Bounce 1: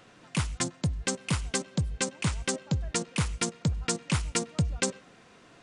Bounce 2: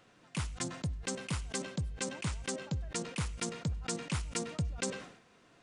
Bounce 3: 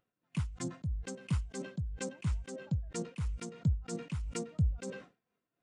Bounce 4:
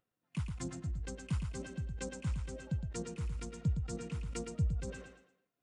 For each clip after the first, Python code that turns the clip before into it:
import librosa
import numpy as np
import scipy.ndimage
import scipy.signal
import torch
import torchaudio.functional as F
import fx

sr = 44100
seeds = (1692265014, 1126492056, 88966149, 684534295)

y1 = fx.sustainer(x, sr, db_per_s=84.0)
y1 = F.gain(torch.from_numpy(y1), -8.0).numpy()
y2 = fx.leveller(y1, sr, passes=1)
y2 = y2 * (1.0 - 0.45 / 2.0 + 0.45 / 2.0 * np.cos(2.0 * np.pi * 3.0 * (np.arange(len(y2)) / sr)))
y2 = fx.spectral_expand(y2, sr, expansion=1.5)
y3 = fx.echo_feedback(y2, sr, ms=114, feedback_pct=34, wet_db=-6)
y3 = F.gain(torch.from_numpy(y3), -3.0).numpy()